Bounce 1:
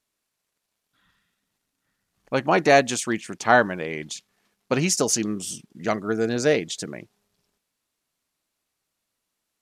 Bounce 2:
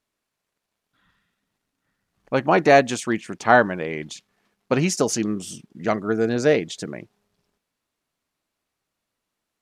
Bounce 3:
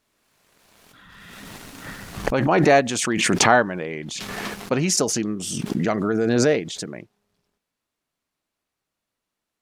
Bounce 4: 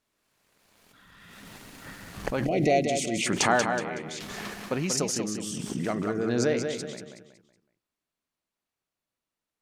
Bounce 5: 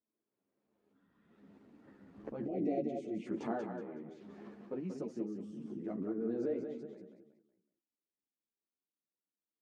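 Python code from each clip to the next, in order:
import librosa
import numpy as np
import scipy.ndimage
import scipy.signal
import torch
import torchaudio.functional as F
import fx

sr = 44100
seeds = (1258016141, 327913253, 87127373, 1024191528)

y1 = fx.high_shelf(x, sr, hz=3600.0, db=-8.5)
y1 = F.gain(torch.from_numpy(y1), 2.5).numpy()
y2 = fx.pre_swell(y1, sr, db_per_s=23.0)
y2 = F.gain(torch.from_numpy(y2), -2.0).numpy()
y3 = fx.echo_feedback(y2, sr, ms=186, feedback_pct=35, wet_db=-6.0)
y3 = fx.spec_box(y3, sr, start_s=2.46, length_s=0.81, low_hz=770.0, high_hz=1900.0, gain_db=-24)
y3 = F.gain(torch.from_numpy(y3), -7.5).numpy()
y4 = fx.bandpass_q(y3, sr, hz=310.0, q=1.6)
y4 = fx.ensemble(y4, sr)
y4 = F.gain(torch.from_numpy(y4), -3.5).numpy()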